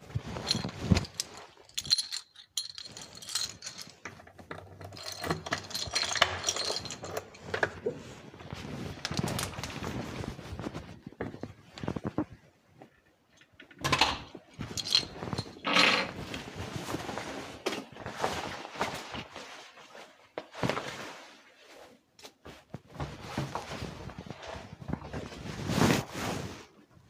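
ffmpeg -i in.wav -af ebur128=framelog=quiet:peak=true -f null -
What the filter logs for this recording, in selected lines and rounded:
Integrated loudness:
  I:         -33.0 LUFS
  Threshold: -44.2 LUFS
Loudness range:
  LRA:        11.4 LU
  Threshold: -54.4 LUFS
  LRA low:   -41.2 LUFS
  LRA high:  -29.8 LUFS
True peak:
  Peak:       -6.4 dBFS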